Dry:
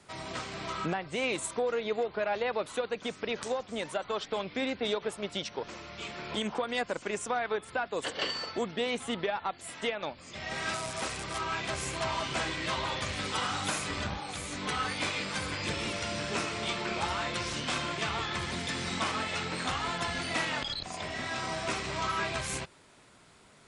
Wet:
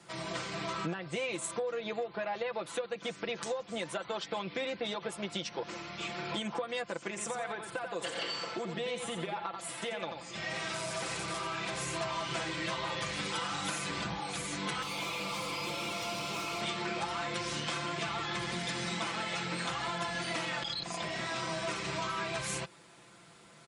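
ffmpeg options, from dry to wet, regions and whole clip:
ffmpeg -i in.wav -filter_complex "[0:a]asettb=1/sr,asplit=3[link_01][link_02][link_03];[link_01]atrim=end=7.094[link_04];[link_02]atrim=start=7.09:end=11.95,asetpts=PTS-STARTPTS,afade=type=in:duration=0.004:curve=qsin,afade=type=out:start_time=4.856:duration=0.004:curve=qsin,acompressor=threshold=-33dB:ratio=4:attack=3.2:release=140:knee=1:detection=peak,aecho=1:1:88|176|264:0.447|0.121|0.0326,atrim=end_sample=214326[link_05];[link_03]atrim=start=11.946[link_06];[link_04][link_05]acrossfade=duration=0.004:curve1=hsin:curve2=qsin[link_07];[link_07][link_06]acrossfade=duration=0.004:curve1=qsin:curve2=hsin,asettb=1/sr,asplit=3[link_08][link_09][link_10];[link_08]atrim=end=14.824[link_11];[link_09]atrim=start=14.82:end=16.61,asetpts=PTS-STARTPTS,afade=type=in:duration=0.004:curve=qsin,afade=type=out:start_time=1.786:duration=0.004:curve=qsin,asuperstop=centerf=1700:order=20:qfactor=2.5,asplit=2[link_12][link_13];[link_13]highpass=frequency=720:poles=1,volume=24dB,asoftclip=type=tanh:threshold=-19.5dB[link_14];[link_12][link_14]amix=inputs=2:normalize=0,lowpass=frequency=6700:poles=1,volume=-6dB,acrossover=split=170|1700[link_15][link_16][link_17];[link_15]acompressor=threshold=-47dB:ratio=4[link_18];[link_16]acompressor=threshold=-40dB:ratio=4[link_19];[link_17]acompressor=threshold=-42dB:ratio=4[link_20];[link_18][link_19][link_20]amix=inputs=3:normalize=0[link_21];[link_10]atrim=start=16.606[link_22];[link_11][link_21]acrossfade=duration=0.004:curve1=hsin:curve2=qsin[link_23];[link_23][link_22]acrossfade=duration=0.004:curve1=qsin:curve2=hsin,highpass=73,aecho=1:1:5.9:0.7,acompressor=threshold=-32dB:ratio=6" out.wav

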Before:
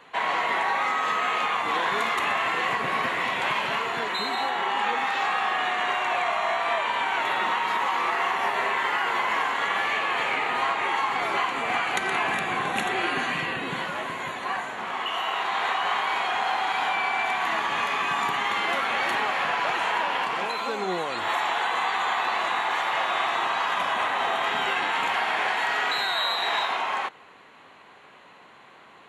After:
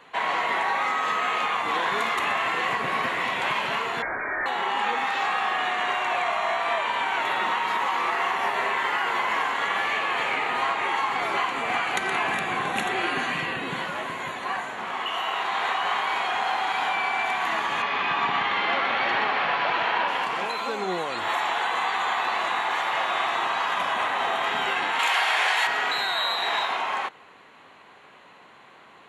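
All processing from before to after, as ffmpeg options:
ffmpeg -i in.wav -filter_complex "[0:a]asettb=1/sr,asplit=3[link_01][link_02][link_03];[link_01]atrim=end=4.024[link_04];[link_02]atrim=start=4.02:end=4.46,asetpts=PTS-STARTPTS,afade=type=in:duration=0.004:curve=qsin,afade=type=out:start_time=0.436:duration=0.004:curve=qsin,highpass=130,aemphasis=mode=production:type=bsi,lowpass=frequency=2200:width_type=q:width=0.5098,lowpass=frequency=2200:width_type=q:width=0.6013,lowpass=frequency=2200:width_type=q:width=0.9,lowpass=frequency=2200:width_type=q:width=2.563,afreqshift=-2600[link_05];[link_03]atrim=start=4.456[link_06];[link_04][link_05]acrossfade=duration=0.004:curve1=hsin:curve2=qsin[link_07];[link_07][link_06]acrossfade=duration=0.004:curve1=qsin:curve2=hsin,asettb=1/sr,asplit=3[link_08][link_09][link_10];[link_08]atrim=end=17.824[link_11];[link_09]atrim=start=17.82:end=20.08,asetpts=PTS-STARTPTS,afade=type=in:duration=0.004:curve=qsin,afade=type=out:start_time=2.256:duration=0.004:curve=qsin,lowpass=frequency=4800:width=0.5412,lowpass=frequency=4800:width=1.3066,aecho=1:1:124:0.596,atrim=end_sample=99666[link_12];[link_10]atrim=start=20.076[link_13];[link_11][link_12]acrossfade=duration=0.004:curve1=hsin:curve2=qsin[link_14];[link_14][link_13]acrossfade=duration=0.004:curve1=qsin:curve2=hsin,asettb=1/sr,asplit=3[link_15][link_16][link_17];[link_15]atrim=end=24.994[link_18];[link_16]atrim=start=24.99:end=25.67,asetpts=PTS-STARTPTS,afade=type=in:duration=0.004:curve=qsin,afade=type=out:start_time=0.676:duration=0.004:curve=qsin,highpass=450,highshelf=frequency=2400:gain=10[link_19];[link_17]atrim=start=25.666[link_20];[link_18][link_19]acrossfade=duration=0.004:curve1=hsin:curve2=qsin[link_21];[link_21][link_20]acrossfade=duration=0.004:curve1=qsin:curve2=hsin" out.wav

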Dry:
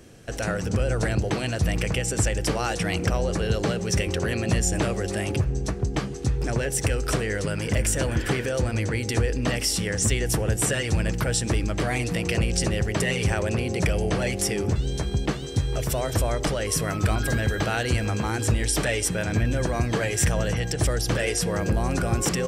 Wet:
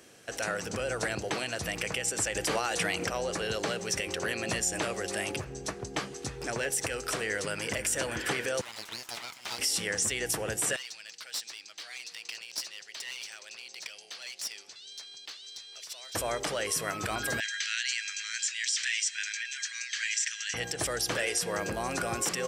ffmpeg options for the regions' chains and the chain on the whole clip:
ffmpeg -i in.wav -filter_complex "[0:a]asettb=1/sr,asplit=3[link_01][link_02][link_03];[link_01]atrim=end=2.354[link_04];[link_02]atrim=start=2.35:end=3.04,asetpts=PTS-STARTPTS,afade=type=in:duration=0.004:curve=qsin,afade=type=out:start_time=0.686:duration=0.004:curve=qsin,bandreject=frequency=5400:width=13,acontrast=62[link_05];[link_03]atrim=start=3.036[link_06];[link_04][link_05]acrossfade=duration=0.004:curve1=hsin:curve2=qsin[link_07];[link_07][link_06]acrossfade=duration=0.004:curve1=qsin:curve2=hsin,asettb=1/sr,asplit=3[link_08][link_09][link_10];[link_08]atrim=end=8.614[link_11];[link_09]atrim=start=8.61:end=9.59,asetpts=PTS-STARTPTS,afade=type=in:duration=0.004:curve=qsin,afade=type=out:start_time=0.976:duration=0.004:curve=qsin,acrossover=split=4900[link_12][link_13];[link_13]acompressor=threshold=-52dB:ratio=4:attack=1:release=60[link_14];[link_12][link_14]amix=inputs=2:normalize=0,highpass=960,aeval=exprs='abs(val(0))':channel_layout=same[link_15];[link_10]atrim=start=9.586[link_16];[link_11][link_15]acrossfade=duration=0.004:curve1=hsin:curve2=qsin[link_17];[link_17][link_16]acrossfade=duration=0.004:curve1=qsin:curve2=hsin,asettb=1/sr,asplit=3[link_18][link_19][link_20];[link_18]atrim=end=10.764[link_21];[link_19]atrim=start=10.76:end=16.15,asetpts=PTS-STARTPTS,afade=type=in:duration=0.004:curve=qsin,afade=type=out:start_time=5.386:duration=0.004:curve=qsin,bandpass=frequency=4400:width_type=q:width=2.3,aeval=exprs='clip(val(0),-1,0.0158)':channel_layout=same[link_22];[link_20]atrim=start=16.146[link_23];[link_21][link_22]acrossfade=duration=0.004:curve1=hsin:curve2=qsin[link_24];[link_24][link_23]acrossfade=duration=0.004:curve1=qsin:curve2=hsin,asettb=1/sr,asplit=3[link_25][link_26][link_27];[link_25]atrim=end=17.404[link_28];[link_26]atrim=start=17.4:end=20.54,asetpts=PTS-STARTPTS,afade=type=in:duration=0.004:curve=qsin,afade=type=out:start_time=3.136:duration=0.004:curve=qsin,asuperpass=centerf=3600:order=12:qfactor=0.62,highshelf=frequency=4900:gain=9.5[link_29];[link_27]atrim=start=20.536[link_30];[link_28][link_29]acrossfade=duration=0.004:curve1=hsin:curve2=qsin[link_31];[link_31][link_30]acrossfade=duration=0.004:curve1=qsin:curve2=hsin,highpass=frequency=780:poles=1,alimiter=limit=-18.5dB:level=0:latency=1:release=97" out.wav

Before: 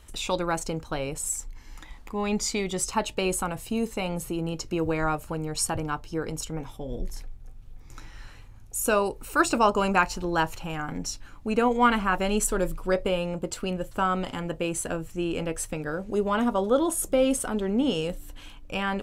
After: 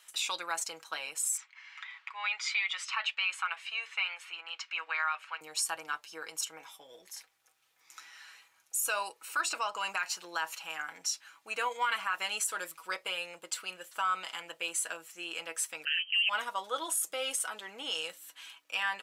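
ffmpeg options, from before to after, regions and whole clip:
ffmpeg -i in.wav -filter_complex "[0:a]asettb=1/sr,asplit=3[link_01][link_02][link_03];[link_01]atrim=end=1.374[link_04];[link_02]atrim=start=1.37:end=5.41,asetpts=PTS-STARTPTS,afade=type=in:duration=0.004:curve=qsin,afade=type=out:start_time=4.036:duration=0.004:curve=qsin,equalizer=frequency=2300:width=5.8:gain=3.5,acontrast=67,asuperpass=centerf=1900:order=4:qfactor=0.86[link_05];[link_03]atrim=start=5.406[link_06];[link_04][link_05]acrossfade=duration=0.004:curve1=hsin:curve2=qsin[link_07];[link_07][link_06]acrossfade=duration=0.004:curve1=qsin:curve2=hsin,asettb=1/sr,asplit=3[link_08][link_09][link_10];[link_08]atrim=end=9.134[link_11];[link_09]atrim=start=9.13:end=9.89,asetpts=PTS-STARTPTS,afade=type=in:duration=0.004:curve=qsin,afade=type=out:start_time=0.756:duration=0.004:curve=qsin,highshelf=frequency=8500:gain=-7,acompressor=threshold=-21dB:ratio=4:attack=3.2:release=140:knee=1:detection=peak[link_12];[link_10]atrim=start=9.886[link_13];[link_11][link_12]acrossfade=duration=0.004:curve1=hsin:curve2=qsin[link_14];[link_14][link_13]acrossfade=duration=0.004:curve1=qsin:curve2=hsin,asettb=1/sr,asplit=3[link_15][link_16][link_17];[link_15]atrim=end=15.854[link_18];[link_16]atrim=start=15.85:end=16.29,asetpts=PTS-STARTPTS,afade=type=in:duration=0.004:curve=qsin,afade=type=out:start_time=0.436:duration=0.004:curve=qsin,agate=range=-15dB:threshold=-34dB:ratio=16:release=100:detection=peak,lowpass=frequency=2700:width_type=q:width=0.5098,lowpass=frequency=2700:width_type=q:width=0.6013,lowpass=frequency=2700:width_type=q:width=0.9,lowpass=frequency=2700:width_type=q:width=2.563,afreqshift=-3200,acontrast=77[link_19];[link_17]atrim=start=16.286[link_20];[link_18][link_19]acrossfade=duration=0.004:curve1=hsin:curve2=qsin[link_21];[link_21][link_20]acrossfade=duration=0.004:curve1=qsin:curve2=hsin,highpass=1400,aecho=1:1:6.2:0.51,alimiter=limit=-21dB:level=0:latency=1:release=56" out.wav

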